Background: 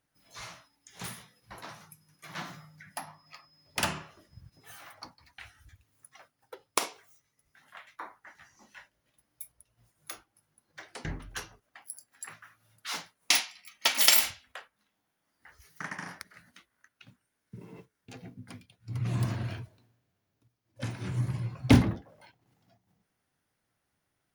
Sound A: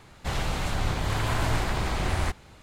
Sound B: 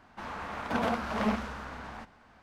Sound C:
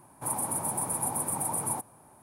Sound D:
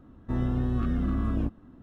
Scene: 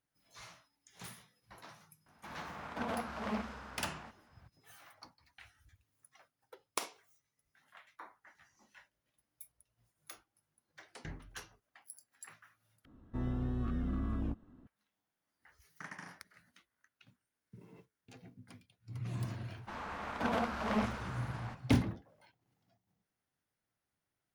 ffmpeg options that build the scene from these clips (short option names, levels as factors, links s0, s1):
-filter_complex "[2:a]asplit=2[s0][s1];[0:a]volume=0.355[s2];[s0]highpass=48[s3];[4:a]asoftclip=type=hard:threshold=0.1[s4];[s2]asplit=2[s5][s6];[s5]atrim=end=12.854[s7];[s4]atrim=end=1.82,asetpts=PTS-STARTPTS,volume=0.376[s8];[s6]atrim=start=14.666[s9];[s3]atrim=end=2.42,asetpts=PTS-STARTPTS,volume=0.376,afade=t=in:d=0.004:c=hsin,afade=t=out:st=2.416:d=0.004:c=hsin,adelay=2060[s10];[s1]atrim=end=2.42,asetpts=PTS-STARTPTS,volume=0.631,afade=t=in:d=0.004:c=hsin,afade=t=out:st=2.416:d=0.004:c=hsin,adelay=19500[s11];[s7][s8]acrossfade=d=0.004:c1=hsin:c2=hsin[s12];[s12][s9]acrossfade=d=0.004:c1=hsin:c2=hsin[s13];[s13][s10][s11]amix=inputs=3:normalize=0"